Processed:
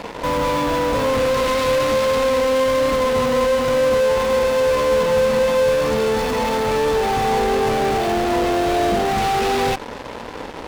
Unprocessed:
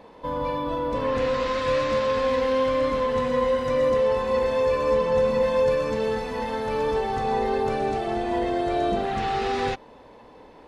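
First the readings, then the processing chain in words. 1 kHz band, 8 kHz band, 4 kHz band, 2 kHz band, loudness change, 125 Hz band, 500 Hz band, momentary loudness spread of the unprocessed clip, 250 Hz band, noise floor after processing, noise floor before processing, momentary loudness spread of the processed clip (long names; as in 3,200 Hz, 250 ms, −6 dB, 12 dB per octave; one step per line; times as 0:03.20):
+6.0 dB, can't be measured, +10.0 dB, +8.5 dB, +6.0 dB, +6.0 dB, +5.5 dB, 6 LU, +6.0 dB, −33 dBFS, −49 dBFS, 4 LU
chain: parametric band 1,700 Hz −5 dB 0.31 octaves
in parallel at −9.5 dB: fuzz pedal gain 47 dB, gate −48 dBFS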